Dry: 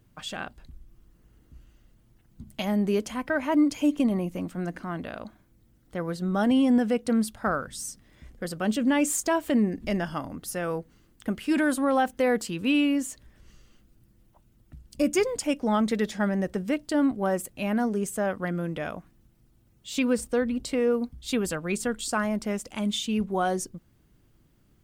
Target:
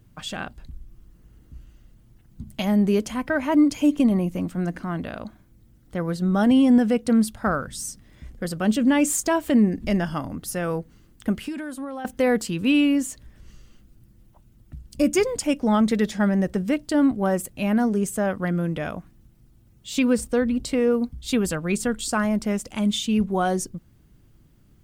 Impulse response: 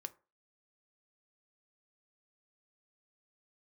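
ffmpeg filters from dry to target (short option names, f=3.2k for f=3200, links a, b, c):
-filter_complex "[0:a]asettb=1/sr,asplit=3[a][b][c];[a]atrim=end=11.404[d];[b]atrim=start=11.4:end=12.05,asetpts=PTS-STARTPTS,afade=t=in:d=0.004:c=qsin,afade=t=out:st=0.646:d=0.004:c=qsin,acompressor=threshold=-33dB:ratio=10[e];[c]atrim=start=12.046[f];[d][e]acrossfade=d=0.004:c1=hsin:c2=qsin[g];[g][f]acrossfade=d=0.004:c1=qsin:c2=hsin,bass=f=250:g=5,treble=f=4k:g=1,volume=2.5dB"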